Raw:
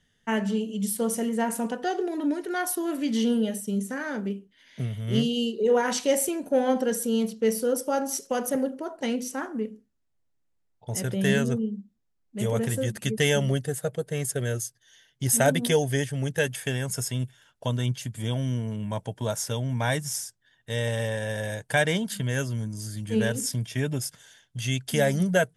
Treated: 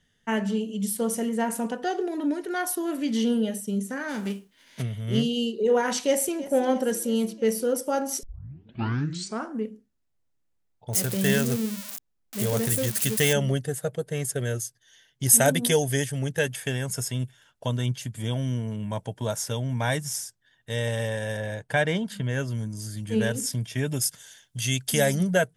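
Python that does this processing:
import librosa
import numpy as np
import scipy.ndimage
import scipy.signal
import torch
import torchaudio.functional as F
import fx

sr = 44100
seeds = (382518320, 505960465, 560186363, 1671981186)

y = fx.envelope_flatten(x, sr, power=0.6, at=(4.08, 4.81), fade=0.02)
y = fx.echo_throw(y, sr, start_s=5.97, length_s=0.53, ms=330, feedback_pct=70, wet_db=-16.5)
y = fx.crossing_spikes(y, sr, level_db=-19.0, at=(10.93, 13.33))
y = fx.high_shelf(y, sr, hz=6000.0, db=9.0, at=(15.23, 16.19))
y = fx.high_shelf(y, sr, hz=5200.0, db=-12.0, at=(21.37, 22.48))
y = fx.high_shelf(y, sr, hz=4400.0, db=9.5, at=(23.87, 25.15))
y = fx.edit(y, sr, fx.tape_start(start_s=8.23, length_s=1.36), tone=tone)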